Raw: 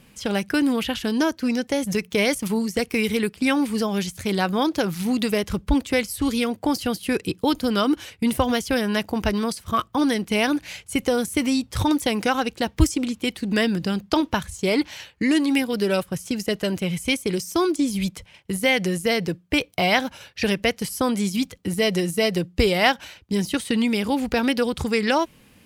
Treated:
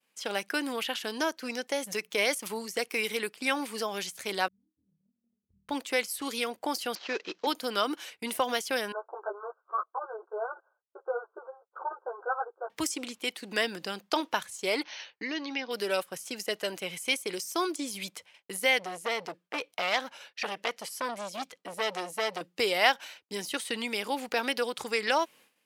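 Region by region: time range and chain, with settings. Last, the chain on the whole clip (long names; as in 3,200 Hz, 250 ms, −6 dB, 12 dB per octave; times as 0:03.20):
0:04.48–0:05.69: inverse Chebyshev low-pass filter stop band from 550 Hz, stop band 80 dB + flutter between parallel walls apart 4.4 metres, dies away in 0.61 s
0:06.95–0:07.47: variable-slope delta modulation 32 kbit/s + high-pass filter 230 Hz
0:08.92–0:12.70: mu-law and A-law mismatch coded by A + linear-phase brick-wall band-pass 350–1,600 Hz + string-ensemble chorus
0:14.83–0:15.71: linear-phase brick-wall low-pass 6,500 Hz + downward compressor 1.5 to 1, threshold −26 dBFS
0:18.79–0:22.41: high-shelf EQ 9,000 Hz −9.5 dB + saturating transformer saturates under 2,300 Hz
whole clip: downward expander −43 dBFS; high-pass filter 510 Hz 12 dB per octave; level −4 dB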